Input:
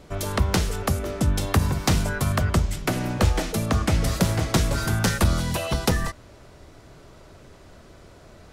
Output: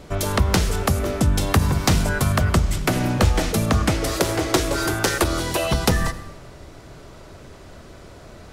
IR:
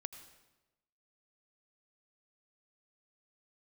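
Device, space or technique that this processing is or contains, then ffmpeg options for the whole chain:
ducked reverb: -filter_complex "[0:a]asplit=3[s0][s1][s2];[1:a]atrim=start_sample=2205[s3];[s1][s3]afir=irnorm=-1:irlink=0[s4];[s2]apad=whole_len=375982[s5];[s4][s5]sidechaincompress=threshold=0.0631:ratio=8:attack=16:release=127,volume=1.33[s6];[s0][s6]amix=inputs=2:normalize=0,asettb=1/sr,asplit=3[s7][s8][s9];[s7]atrim=end=3.924[s10];[s8]atrim=start=3.92:end=5.64,asetpts=PTS-STARTPTS,afade=t=in:d=0.004:c=qsin,afade=t=out:st=1.716:d=0.004:c=qsin,lowshelf=f=260:t=q:w=3:g=-7[s11];[s9]atrim=start=5.636[s12];[s10][s11]acrossfade=d=0.004:c1=hsin:c2=qsin[s13];[s13][s12]acrossfade=d=0.004:c1=qsin:c2=hsin"

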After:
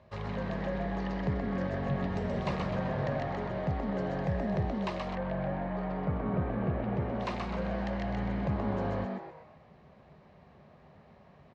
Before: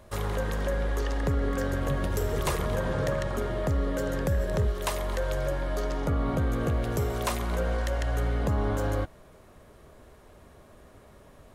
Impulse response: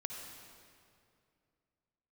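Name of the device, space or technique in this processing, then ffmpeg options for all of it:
frequency-shifting delay pedal into a guitar cabinet: -filter_complex "[0:a]asplit=6[s0][s1][s2][s3][s4][s5];[s1]adelay=127,afreqshift=140,volume=0.631[s6];[s2]adelay=254,afreqshift=280,volume=0.26[s7];[s3]adelay=381,afreqshift=420,volume=0.106[s8];[s4]adelay=508,afreqshift=560,volume=0.0437[s9];[s5]adelay=635,afreqshift=700,volume=0.0178[s10];[s0][s6][s7][s8][s9][s10]amix=inputs=6:normalize=0,highpass=78,equalizer=f=150:t=q:w=4:g=5,equalizer=f=310:t=q:w=4:g=-9,equalizer=f=460:t=q:w=4:g=-3,equalizer=f=1400:t=q:w=4:g=-7,equalizer=f=3400:t=q:w=4:g=-6,lowpass=f=4200:w=0.5412,lowpass=f=4200:w=1.3066,asettb=1/sr,asplit=3[s11][s12][s13];[s11]atrim=end=5.154[s14];[s12]atrim=start=5.15:end=7.2,asetpts=PTS-STARTPTS,afade=t=in:d=0.004:c=qsin,afade=t=out:st=2.046:d=0.004:c=qsin,lowpass=2500[s15];[s13]atrim=start=7.196[s16];[s14][s15]acrossfade=d=0.004:c1=hsin:c2=qsin[s17];[s17][s16]acrossfade=d=0.004:c1=qsin:c2=hsin,volume=0.596"

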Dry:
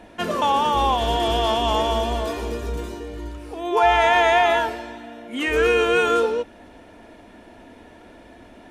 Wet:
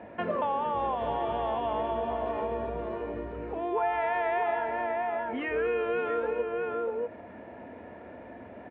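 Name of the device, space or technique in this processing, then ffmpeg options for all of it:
bass amplifier: -filter_complex "[0:a]asettb=1/sr,asplit=3[s0][s1][s2];[s0]atrim=end=0.744[s3];[s1]atrim=start=0.74:end=1.19,asetpts=PTS-STARTPTS,afade=t=in:d=0.004:c=qsin,afade=t=out:st=0.446:d=0.004:c=qsin,equalizer=f=6200:w=2.4:g=6[s4];[s2]atrim=start=1.186[s5];[s3][s4]acrossfade=d=0.004:c1=hsin:c2=qsin[s6];[s6][s5]acrossfade=d=0.004:c1=qsin:c2=hsin,asplit=2[s7][s8];[s8]adelay=641.4,volume=0.447,highshelf=f=4000:g=-14.4[s9];[s7][s9]amix=inputs=2:normalize=0,acompressor=threshold=0.0316:ratio=3,highpass=f=76:w=0.5412,highpass=f=76:w=1.3066,equalizer=f=310:t=q:w=4:g=-4,equalizer=f=550:t=q:w=4:g=5,equalizer=f=1400:t=q:w=4:g=-3,lowpass=f=2200:w=0.5412,lowpass=f=2200:w=1.3066"

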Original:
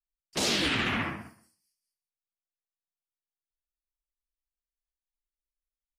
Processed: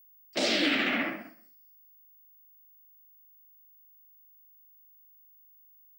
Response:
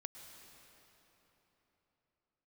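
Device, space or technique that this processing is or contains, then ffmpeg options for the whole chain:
old television with a line whistle: -af "highpass=f=220:w=0.5412,highpass=f=220:w=1.3066,equalizer=f=290:t=q:w=4:g=7,equalizer=f=420:t=q:w=4:g=-4,equalizer=f=600:t=q:w=4:g=9,equalizer=f=1000:t=q:w=4:g=-9,equalizer=f=2100:t=q:w=4:g=4,equalizer=f=6500:t=q:w=4:g=-7,lowpass=f=7200:w=0.5412,lowpass=f=7200:w=1.3066,aeval=exprs='val(0)+0.00158*sin(2*PI*15625*n/s)':c=same"

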